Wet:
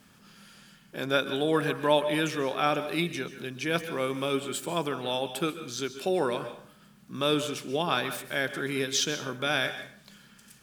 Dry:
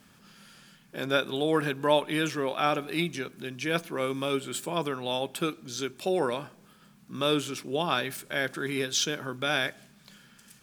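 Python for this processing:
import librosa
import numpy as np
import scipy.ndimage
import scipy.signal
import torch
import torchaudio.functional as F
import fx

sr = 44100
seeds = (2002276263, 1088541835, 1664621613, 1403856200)

y = fx.rev_plate(x, sr, seeds[0], rt60_s=0.51, hf_ratio=0.8, predelay_ms=120, drr_db=11.0)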